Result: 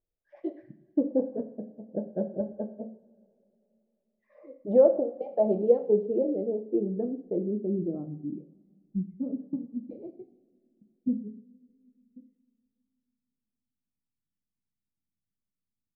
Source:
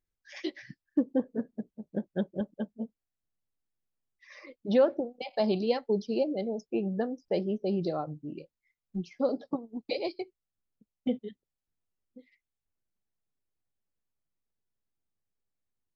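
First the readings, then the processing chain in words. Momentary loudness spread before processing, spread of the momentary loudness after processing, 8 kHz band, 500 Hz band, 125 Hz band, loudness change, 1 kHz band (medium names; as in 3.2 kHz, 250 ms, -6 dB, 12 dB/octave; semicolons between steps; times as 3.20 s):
14 LU, 17 LU, no reading, +4.0 dB, +0.5 dB, +3.0 dB, -4.0 dB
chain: two-slope reverb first 0.54 s, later 3.1 s, from -22 dB, DRR 6 dB; low-pass sweep 610 Hz -> 220 Hz, 5.06–9.05 s; trim -2.5 dB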